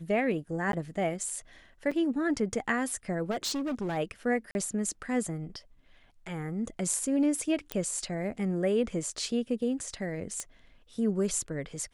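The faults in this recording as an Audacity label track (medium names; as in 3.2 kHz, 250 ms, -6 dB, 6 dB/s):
0.720000	0.730000	dropout 12 ms
1.910000	1.920000	dropout 5.5 ms
3.300000	3.980000	clipped -28.5 dBFS
4.510000	4.550000	dropout 41 ms
7.720000	7.720000	pop -15 dBFS
10.400000	10.400000	pop -20 dBFS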